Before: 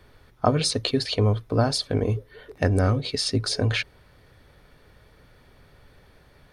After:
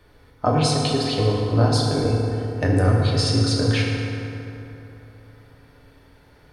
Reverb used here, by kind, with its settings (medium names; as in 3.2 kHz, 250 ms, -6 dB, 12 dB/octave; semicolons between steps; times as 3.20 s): FDN reverb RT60 3.3 s, high-frequency decay 0.5×, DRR -3 dB; trim -2 dB